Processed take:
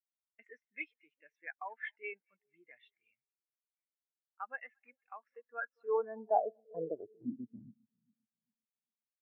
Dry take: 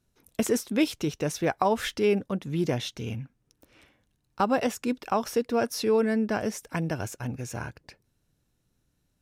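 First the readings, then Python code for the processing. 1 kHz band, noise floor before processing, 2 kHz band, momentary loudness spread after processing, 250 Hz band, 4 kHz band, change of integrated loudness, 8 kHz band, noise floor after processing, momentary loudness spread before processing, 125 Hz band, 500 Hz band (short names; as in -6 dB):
-9.5 dB, -74 dBFS, -9.0 dB, 20 LU, -21.5 dB, under -30 dB, -11.5 dB, under -40 dB, under -85 dBFS, 11 LU, -29.0 dB, -12.5 dB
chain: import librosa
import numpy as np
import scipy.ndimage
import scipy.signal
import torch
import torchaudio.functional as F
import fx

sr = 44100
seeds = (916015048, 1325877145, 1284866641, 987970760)

p1 = x + fx.echo_split(x, sr, split_hz=660.0, low_ms=399, high_ms=226, feedback_pct=52, wet_db=-16, dry=0)
p2 = fx.filter_sweep_bandpass(p1, sr, from_hz=2000.0, to_hz=220.0, start_s=5.39, end_s=7.67, q=2.9)
p3 = fx.spectral_expand(p2, sr, expansion=2.5)
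y = p3 * librosa.db_to_amplitude(4.0)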